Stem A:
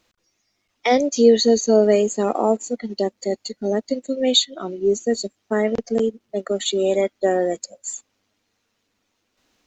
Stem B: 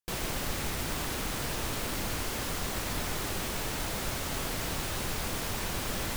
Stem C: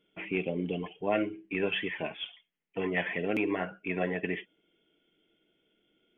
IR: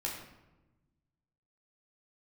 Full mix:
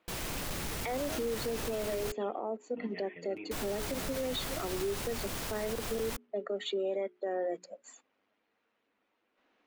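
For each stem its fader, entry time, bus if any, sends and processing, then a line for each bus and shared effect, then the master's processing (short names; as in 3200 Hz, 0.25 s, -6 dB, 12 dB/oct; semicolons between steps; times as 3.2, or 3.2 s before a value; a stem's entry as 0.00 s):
-2.5 dB, 0.00 s, no send, three-band isolator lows -18 dB, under 220 Hz, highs -24 dB, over 2900 Hz; compressor 6:1, threshold -24 dBFS, peak gain reduction 14 dB; notches 60/120/180/240/300/360/420 Hz
-2.0 dB, 0.00 s, muted 2.12–3.51, no send, modulation noise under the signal 12 dB; soft clip -29 dBFS, distortion -15 dB
-18.0 dB, 0.00 s, no send, comb 6.5 ms, depth 77%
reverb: off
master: limiter -26 dBFS, peak gain reduction 10.5 dB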